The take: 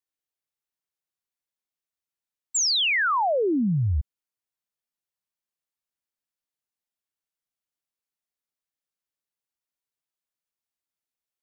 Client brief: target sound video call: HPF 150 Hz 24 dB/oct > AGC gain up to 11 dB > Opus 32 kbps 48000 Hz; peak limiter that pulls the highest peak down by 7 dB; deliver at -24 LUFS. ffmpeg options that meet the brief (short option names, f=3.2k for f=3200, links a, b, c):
-af "alimiter=level_in=2.5dB:limit=-24dB:level=0:latency=1,volume=-2.5dB,highpass=f=150:w=0.5412,highpass=f=150:w=1.3066,dynaudnorm=m=11dB,volume=5.5dB" -ar 48000 -c:a libopus -b:a 32k